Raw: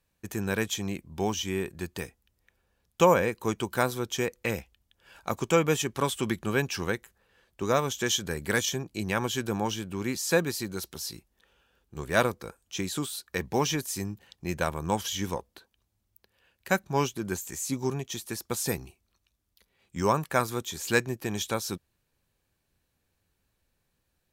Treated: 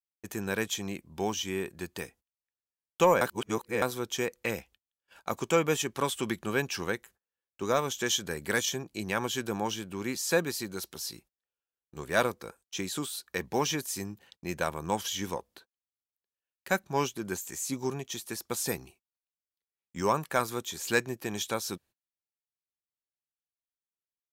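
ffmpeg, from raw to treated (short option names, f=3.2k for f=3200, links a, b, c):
-filter_complex "[0:a]asplit=3[a][b][c];[a]atrim=end=3.212[d];[b]atrim=start=3.208:end=3.822,asetpts=PTS-STARTPTS,areverse[e];[c]atrim=start=3.818[f];[d][e]acrossfade=d=0.004:c1=hsin:c2=hsin[g];[g][f]acrossfade=d=0.004:c1=hsin:c2=hsin,agate=range=-31dB:threshold=-53dB:ratio=16:detection=peak,lowshelf=f=120:g=-10.5,acontrast=49,volume=-7dB"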